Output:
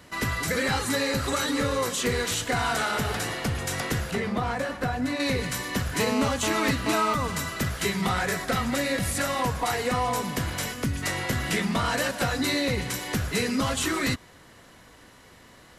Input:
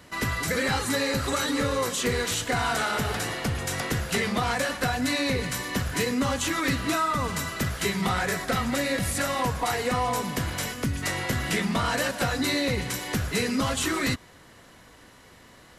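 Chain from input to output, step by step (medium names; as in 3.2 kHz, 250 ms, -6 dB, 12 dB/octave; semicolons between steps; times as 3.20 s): 4.11–5.20 s: treble shelf 2.2 kHz -12 dB; 6.00–7.14 s: mobile phone buzz -29 dBFS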